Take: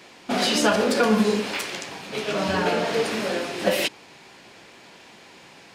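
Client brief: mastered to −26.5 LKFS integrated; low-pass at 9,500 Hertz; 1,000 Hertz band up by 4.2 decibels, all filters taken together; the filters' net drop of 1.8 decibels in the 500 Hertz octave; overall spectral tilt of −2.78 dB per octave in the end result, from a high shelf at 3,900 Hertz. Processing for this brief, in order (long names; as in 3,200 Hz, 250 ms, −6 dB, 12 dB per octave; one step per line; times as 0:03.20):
low-pass filter 9,500 Hz
parametric band 500 Hz −4 dB
parametric band 1,000 Hz +6.5 dB
high-shelf EQ 3,900 Hz +6.5 dB
level −4.5 dB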